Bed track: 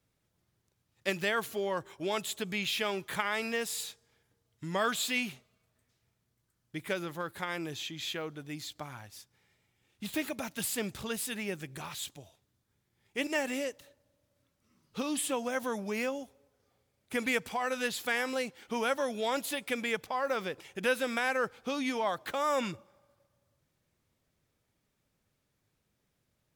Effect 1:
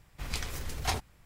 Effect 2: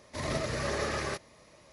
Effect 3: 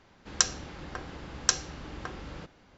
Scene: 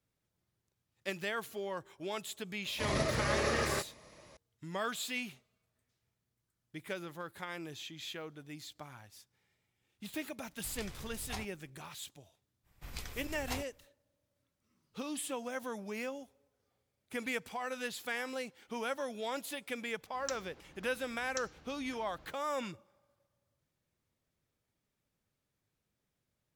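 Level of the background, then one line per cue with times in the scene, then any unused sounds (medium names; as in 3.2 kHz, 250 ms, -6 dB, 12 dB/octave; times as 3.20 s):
bed track -6.5 dB
2.65 s: add 2
10.45 s: add 1 -11.5 dB
12.63 s: add 1 -9 dB, fades 0.05 s + peaking EQ 14 kHz +9 dB 0.27 oct
19.88 s: add 3 -17.5 dB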